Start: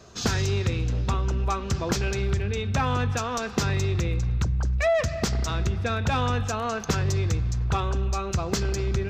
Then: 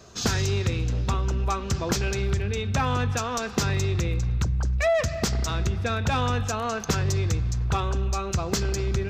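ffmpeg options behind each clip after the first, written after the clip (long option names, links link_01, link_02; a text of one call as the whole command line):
ffmpeg -i in.wav -af "highshelf=frequency=6800:gain=5" out.wav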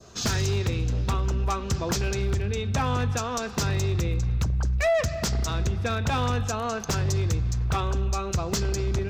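ffmpeg -i in.wav -af "adynamicequalizer=threshold=0.00708:dfrequency=2100:dqfactor=0.8:tfrequency=2100:tqfactor=0.8:attack=5:release=100:ratio=0.375:range=1.5:mode=cutabove:tftype=bell,aeval=exprs='0.126*(abs(mod(val(0)/0.126+3,4)-2)-1)':channel_layout=same" out.wav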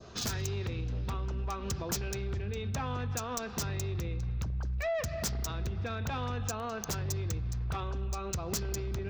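ffmpeg -i in.wav -filter_complex "[0:a]acrossover=split=5600[link_01][link_02];[link_01]alimiter=level_in=4dB:limit=-24dB:level=0:latency=1:release=212,volume=-4dB[link_03];[link_02]acrusher=bits=4:mix=0:aa=0.5[link_04];[link_03][link_04]amix=inputs=2:normalize=0" out.wav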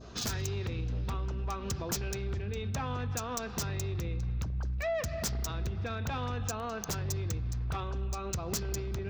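ffmpeg -i in.wav -af "aeval=exprs='val(0)+0.00316*(sin(2*PI*60*n/s)+sin(2*PI*2*60*n/s)/2+sin(2*PI*3*60*n/s)/3+sin(2*PI*4*60*n/s)/4+sin(2*PI*5*60*n/s)/5)':channel_layout=same" out.wav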